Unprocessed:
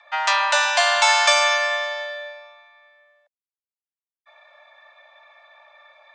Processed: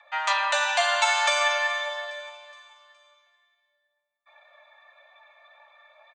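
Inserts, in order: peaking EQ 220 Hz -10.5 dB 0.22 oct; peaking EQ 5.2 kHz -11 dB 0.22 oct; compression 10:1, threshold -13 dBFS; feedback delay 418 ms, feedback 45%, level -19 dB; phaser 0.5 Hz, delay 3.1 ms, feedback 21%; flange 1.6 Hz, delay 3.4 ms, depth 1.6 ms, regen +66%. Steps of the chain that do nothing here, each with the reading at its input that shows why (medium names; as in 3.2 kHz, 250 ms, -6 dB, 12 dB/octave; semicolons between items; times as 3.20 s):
peaking EQ 220 Hz: input has nothing below 540 Hz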